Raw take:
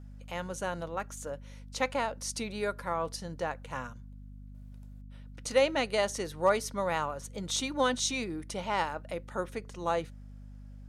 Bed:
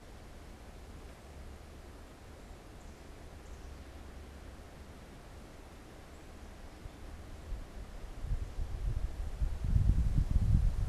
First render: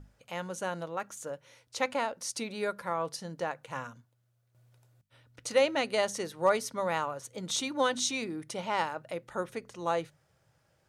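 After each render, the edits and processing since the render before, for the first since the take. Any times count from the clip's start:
mains-hum notches 50/100/150/200/250 Hz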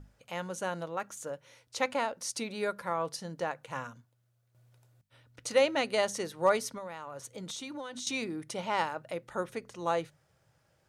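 0:06.74–0:08.07: downward compressor 8 to 1, threshold −37 dBFS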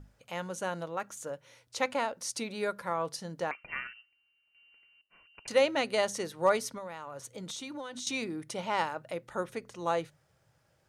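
0:03.51–0:05.48: voice inversion scrambler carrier 2,900 Hz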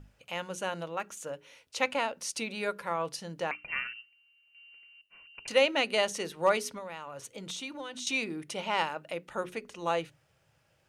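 parametric band 2,700 Hz +8 dB 0.54 octaves
mains-hum notches 60/120/180/240/300/360/420 Hz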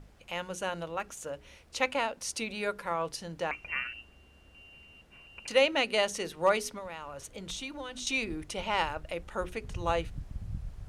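mix in bed −10 dB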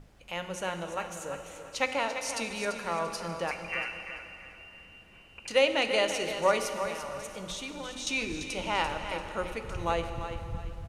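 repeating echo 341 ms, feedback 32%, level −9.5 dB
dense smooth reverb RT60 3.2 s, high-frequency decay 0.9×, DRR 7.5 dB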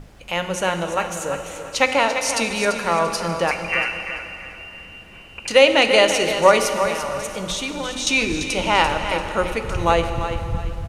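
level +12 dB
brickwall limiter −1 dBFS, peak gain reduction 2 dB

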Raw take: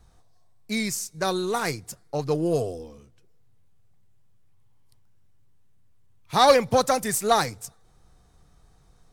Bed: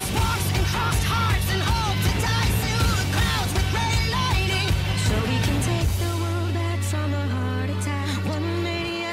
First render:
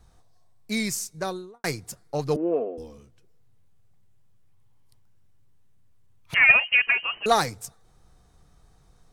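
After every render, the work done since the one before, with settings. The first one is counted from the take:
0:01.02–0:01.64: fade out and dull
0:02.36–0:02.78: Chebyshev band-pass filter 210–2,400 Hz, order 4
0:06.34–0:07.26: voice inversion scrambler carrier 3,000 Hz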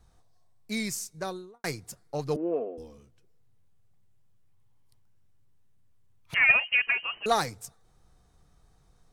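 level −4.5 dB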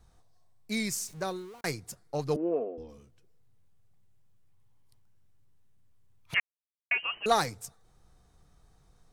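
0:00.92–0:01.61: converter with a step at zero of −47.5 dBFS
0:02.49–0:02.89: high-frequency loss of the air 150 metres
0:06.40–0:06.91: silence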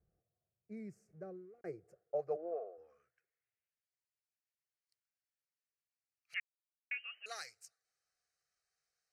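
band-pass filter sweep 250 Hz → 3,900 Hz, 0:01.44–0:03.89
phaser with its sweep stopped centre 960 Hz, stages 6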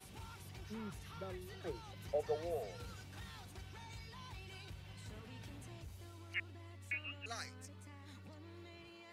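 mix in bed −29.5 dB

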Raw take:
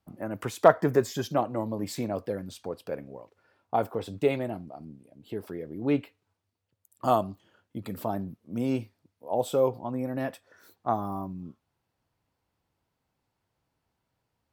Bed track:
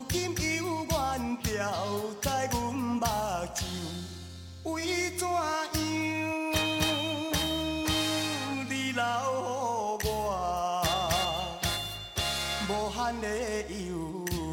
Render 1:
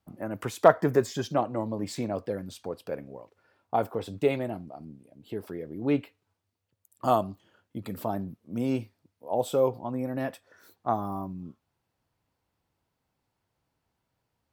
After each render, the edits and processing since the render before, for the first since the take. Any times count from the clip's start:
0:01.06–0:02.32: parametric band 13,000 Hz −11 dB 0.4 octaves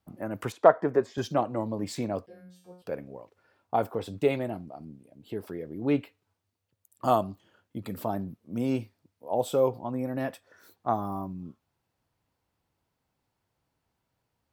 0:00.52–0:01.18: resonant band-pass 660 Hz, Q 0.51
0:02.26–0:02.82: tuned comb filter 180 Hz, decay 0.55 s, mix 100%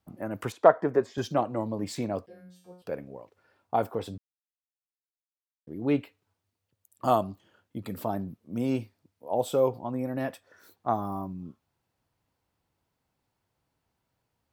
0:04.18–0:05.67: silence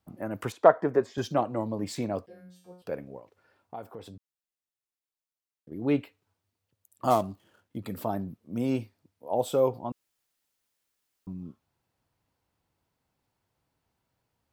0:03.19–0:05.72: downward compressor 2 to 1, threshold −47 dBFS
0:07.10–0:07.77: gap after every zero crossing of 0.066 ms
0:09.92–0:11.27: fill with room tone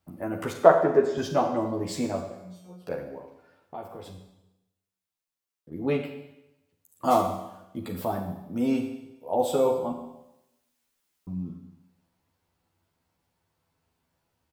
double-tracking delay 12 ms −2.5 dB
four-comb reverb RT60 0.91 s, combs from 33 ms, DRR 5 dB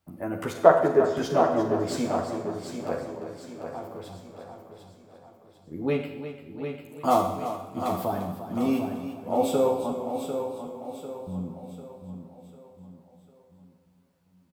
repeating echo 747 ms, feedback 44%, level −8 dB
feedback echo with a swinging delay time 347 ms, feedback 44%, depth 50 cents, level −11.5 dB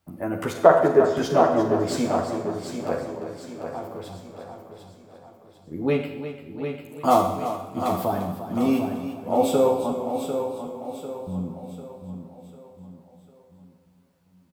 level +3.5 dB
brickwall limiter −1 dBFS, peak gain reduction 3 dB

